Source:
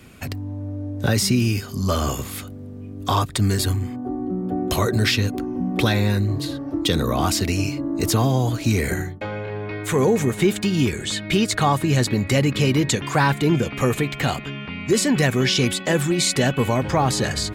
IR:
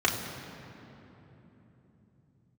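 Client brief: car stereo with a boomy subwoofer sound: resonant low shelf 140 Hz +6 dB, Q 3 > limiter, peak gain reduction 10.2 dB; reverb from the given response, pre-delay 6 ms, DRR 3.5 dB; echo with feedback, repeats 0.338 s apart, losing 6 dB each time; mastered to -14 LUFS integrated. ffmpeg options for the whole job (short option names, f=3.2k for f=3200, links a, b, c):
-filter_complex "[0:a]aecho=1:1:338|676|1014|1352|1690|2028:0.501|0.251|0.125|0.0626|0.0313|0.0157,asplit=2[a][b];[1:a]atrim=start_sample=2205,adelay=6[c];[b][c]afir=irnorm=-1:irlink=0,volume=-17dB[d];[a][d]amix=inputs=2:normalize=0,lowshelf=f=140:t=q:w=3:g=6,volume=1.5dB,alimiter=limit=-5.5dB:level=0:latency=1"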